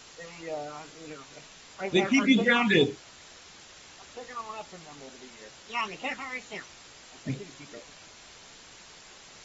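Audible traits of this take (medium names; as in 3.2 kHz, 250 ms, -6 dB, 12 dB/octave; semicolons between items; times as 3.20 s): phasing stages 8, 2.2 Hz, lowest notch 490–1800 Hz; a quantiser's noise floor 8-bit, dither triangular; AAC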